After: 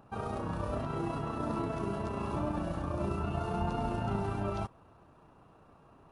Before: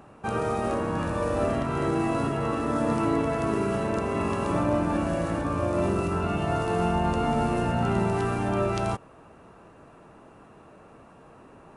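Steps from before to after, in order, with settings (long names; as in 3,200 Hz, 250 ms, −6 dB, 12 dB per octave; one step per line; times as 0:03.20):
time stretch by overlap-add 0.52×, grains 67 ms
octave-band graphic EQ 250/500/2,000/8,000 Hz −5/−6/−10/−12 dB
level −2.5 dB
AAC 64 kbit/s 48,000 Hz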